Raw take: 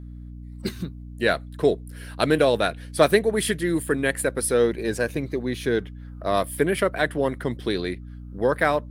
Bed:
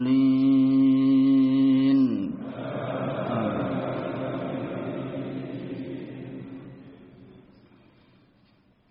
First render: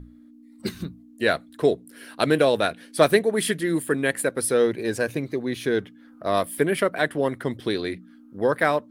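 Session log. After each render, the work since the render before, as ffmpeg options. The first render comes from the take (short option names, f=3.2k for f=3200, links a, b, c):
-af "bandreject=f=60:t=h:w=6,bandreject=f=120:t=h:w=6,bandreject=f=180:t=h:w=6"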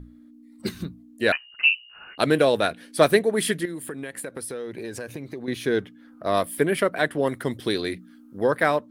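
-filter_complex "[0:a]asettb=1/sr,asplit=3[a][b][c];[a]atrim=end=1.324[d];[b]atrim=start=1.32:end=2.18,asetpts=PTS-STARTPTS,afade=t=in:d=0.004:c=qsin,afade=t=out:st=0.856:d=0.004:c=qsin,lowpass=f=2.6k:t=q:w=0.5098,lowpass=f=2.6k:t=q:w=0.6013,lowpass=f=2.6k:t=q:w=0.9,lowpass=f=2.6k:t=q:w=2.563,afreqshift=-3100[e];[c]atrim=start=2.176[f];[d][e]acrossfade=d=0.004:c1=hsin:c2=qsin[g];[g][f]acrossfade=d=0.004:c1=qsin:c2=hsin,asettb=1/sr,asplit=3[h][i][j];[h]atrim=end=3.654[k];[i]atrim=start=3.65:end=5.48,asetpts=PTS-STARTPTS,afade=t=in:d=0.004:c=qsin,afade=t=out:st=1.826:d=0.004:c=qsin,acompressor=threshold=-30dB:ratio=8:attack=3.2:release=140:knee=1:detection=peak[l];[j]atrim=start=5.476[m];[k][l]acrossfade=d=0.004:c1=hsin:c2=qsin[n];[n][m]acrossfade=d=0.004:c1=qsin:c2=hsin,asettb=1/sr,asplit=3[o][p][q];[o]atrim=end=7.274[r];[p]atrim=start=7.27:end=8.43,asetpts=PTS-STARTPTS,afade=t=in:d=0.004:c=qsin,afade=t=out:st=1.156:d=0.004:c=qsin,highshelf=f=4.9k:g=8[s];[q]atrim=start=8.426[t];[r][s]acrossfade=d=0.004:c1=hsin:c2=qsin[u];[u][t]acrossfade=d=0.004:c1=qsin:c2=hsin"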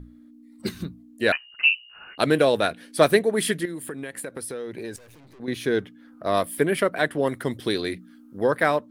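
-filter_complex "[0:a]asettb=1/sr,asplit=3[a][b][c];[a]atrim=end=4.964[d];[b]atrim=start=4.96:end=5.4,asetpts=PTS-STARTPTS,afade=t=in:d=0.004:c=qsin,afade=t=out:st=0.436:d=0.004:c=qsin,aeval=exprs='(tanh(282*val(0)+0.65)-tanh(0.65))/282':c=same[e];[c]atrim=start=5.396[f];[d][e]acrossfade=d=0.004:c1=hsin:c2=qsin[g];[g][f]acrossfade=d=0.004:c1=qsin:c2=hsin"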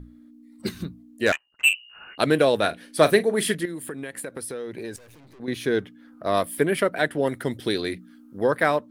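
-filter_complex "[0:a]asettb=1/sr,asplit=3[a][b][c];[a]atrim=end=1.264[d];[b]atrim=start=1.26:end=1.74,asetpts=PTS-STARTPTS,afade=t=in:d=0.004:c=qsin,afade=t=out:st=0.476:d=0.004:c=qsin,adynamicsmooth=sensitivity=1.5:basefreq=820[e];[c]atrim=start=1.736[f];[d][e]acrossfade=d=0.004:c1=hsin:c2=qsin[g];[g][f]acrossfade=d=0.004:c1=qsin:c2=hsin,asettb=1/sr,asplit=3[h][i][j];[h]atrim=end=2.564[k];[i]atrim=start=2.56:end=3.55,asetpts=PTS-STARTPTS,afade=t=in:d=0.004:c=qsin,afade=t=out:st=0.986:d=0.004:c=qsin,asplit=2[l][m];[m]adelay=39,volume=-14dB[n];[l][n]amix=inputs=2:normalize=0,atrim=end_sample=43659[o];[j]atrim=start=3.546[p];[k][o]acrossfade=d=0.004:c1=hsin:c2=qsin[q];[q][p]acrossfade=d=0.004:c1=qsin:c2=hsin,asettb=1/sr,asplit=3[r][s][t];[r]atrim=end=6.854[u];[s]atrim=start=6.85:end=7.78,asetpts=PTS-STARTPTS,afade=t=in:d=0.004:c=qsin,afade=t=out:st=0.926:d=0.004:c=qsin,bandreject=f=1.1k:w=8.1[v];[t]atrim=start=7.776[w];[u][v]acrossfade=d=0.004:c1=hsin:c2=qsin[x];[x][w]acrossfade=d=0.004:c1=qsin:c2=hsin"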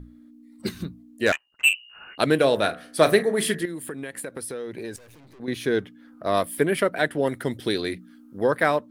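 -filter_complex "[0:a]asettb=1/sr,asplit=3[a][b][c];[a]atrim=end=2.374[d];[b]atrim=start=2.37:end=3.62,asetpts=PTS-STARTPTS,afade=t=in:d=0.004:c=qsin,afade=t=out:st=1.246:d=0.004:c=qsin,bandreject=f=73.78:t=h:w=4,bandreject=f=147.56:t=h:w=4,bandreject=f=221.34:t=h:w=4,bandreject=f=295.12:t=h:w=4,bandreject=f=368.9:t=h:w=4,bandreject=f=442.68:t=h:w=4,bandreject=f=516.46:t=h:w=4,bandreject=f=590.24:t=h:w=4,bandreject=f=664.02:t=h:w=4,bandreject=f=737.8:t=h:w=4,bandreject=f=811.58:t=h:w=4,bandreject=f=885.36:t=h:w=4,bandreject=f=959.14:t=h:w=4,bandreject=f=1.03292k:t=h:w=4,bandreject=f=1.1067k:t=h:w=4,bandreject=f=1.18048k:t=h:w=4,bandreject=f=1.25426k:t=h:w=4,bandreject=f=1.32804k:t=h:w=4,bandreject=f=1.40182k:t=h:w=4,bandreject=f=1.4756k:t=h:w=4,bandreject=f=1.54938k:t=h:w=4,bandreject=f=1.62316k:t=h:w=4,bandreject=f=1.69694k:t=h:w=4,bandreject=f=1.77072k:t=h:w=4,bandreject=f=1.8445k:t=h:w=4,bandreject=f=1.91828k:t=h:w=4,bandreject=f=1.99206k:t=h:w=4,bandreject=f=2.06584k:t=h:w=4,bandreject=f=2.13962k:t=h:w=4[e];[c]atrim=start=3.616[f];[d][e]acrossfade=d=0.004:c1=hsin:c2=qsin[g];[g][f]acrossfade=d=0.004:c1=qsin:c2=hsin"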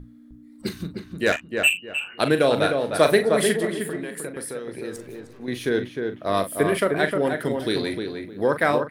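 -filter_complex "[0:a]asplit=2[a][b];[b]adelay=41,volume=-10dB[c];[a][c]amix=inputs=2:normalize=0,asplit=2[d][e];[e]adelay=307,lowpass=f=2k:p=1,volume=-4.5dB,asplit=2[f][g];[g]adelay=307,lowpass=f=2k:p=1,volume=0.26,asplit=2[h][i];[i]adelay=307,lowpass=f=2k:p=1,volume=0.26,asplit=2[j][k];[k]adelay=307,lowpass=f=2k:p=1,volume=0.26[l];[d][f][h][j][l]amix=inputs=5:normalize=0"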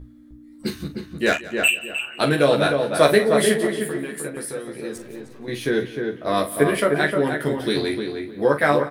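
-filter_complex "[0:a]asplit=2[a][b];[b]adelay=14,volume=-2dB[c];[a][c]amix=inputs=2:normalize=0,aecho=1:1:177|354|531:0.119|0.0428|0.0154"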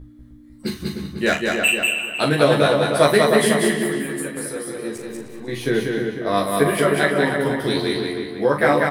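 -filter_complex "[0:a]asplit=2[a][b];[b]adelay=40,volume=-8dB[c];[a][c]amix=inputs=2:normalize=0,aecho=1:1:192|384|576:0.708|0.156|0.0343"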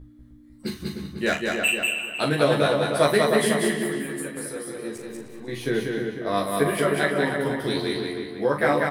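-af "volume=-4.5dB"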